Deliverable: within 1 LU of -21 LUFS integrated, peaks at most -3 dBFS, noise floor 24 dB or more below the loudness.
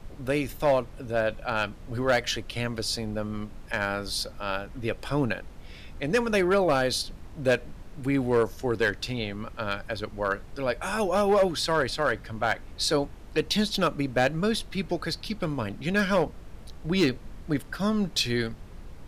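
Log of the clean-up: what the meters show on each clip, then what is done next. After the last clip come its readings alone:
clipped 0.5%; flat tops at -16.0 dBFS; noise floor -45 dBFS; noise floor target -52 dBFS; loudness -27.5 LUFS; peak -16.0 dBFS; loudness target -21.0 LUFS
-> clip repair -16 dBFS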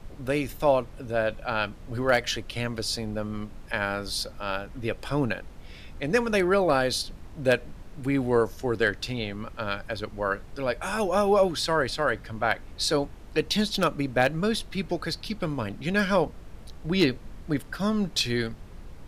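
clipped 0.0%; noise floor -45 dBFS; noise floor target -51 dBFS
-> noise print and reduce 6 dB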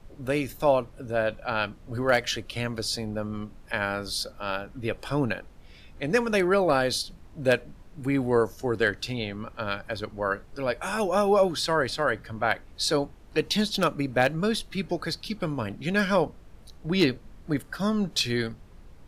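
noise floor -50 dBFS; noise floor target -52 dBFS
-> noise print and reduce 6 dB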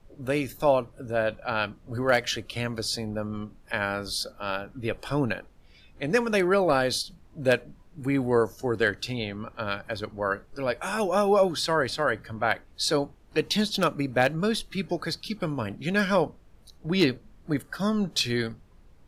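noise floor -55 dBFS; loudness -27.5 LUFS; peak -7.5 dBFS; loudness target -21.0 LUFS
-> gain +6.5 dB; limiter -3 dBFS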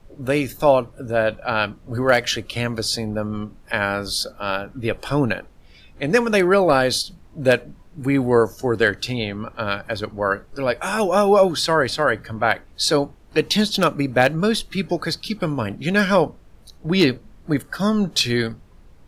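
loudness -21.0 LUFS; peak -3.0 dBFS; noise floor -49 dBFS

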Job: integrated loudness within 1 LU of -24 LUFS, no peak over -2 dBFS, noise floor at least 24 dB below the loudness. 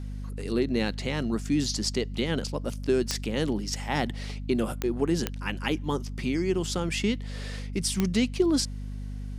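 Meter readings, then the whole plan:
clicks 4; hum 50 Hz; harmonics up to 250 Hz; hum level -33 dBFS; loudness -28.5 LUFS; peak -9.5 dBFS; loudness target -24.0 LUFS
-> de-click; notches 50/100/150/200/250 Hz; gain +4.5 dB

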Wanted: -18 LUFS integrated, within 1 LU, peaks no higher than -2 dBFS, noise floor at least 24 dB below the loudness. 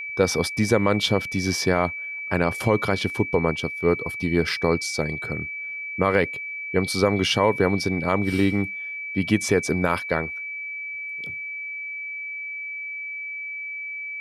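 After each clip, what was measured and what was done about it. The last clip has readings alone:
steady tone 2300 Hz; tone level -30 dBFS; loudness -24.5 LUFS; peak -6.5 dBFS; loudness target -18.0 LUFS
-> notch 2300 Hz, Q 30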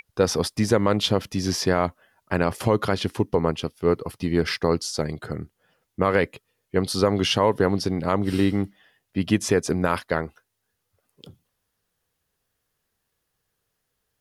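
steady tone none; loudness -24.0 LUFS; peak -7.0 dBFS; loudness target -18.0 LUFS
-> gain +6 dB; limiter -2 dBFS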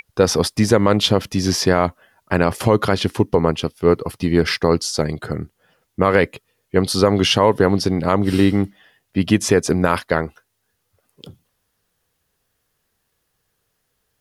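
loudness -18.5 LUFS; peak -2.0 dBFS; noise floor -72 dBFS

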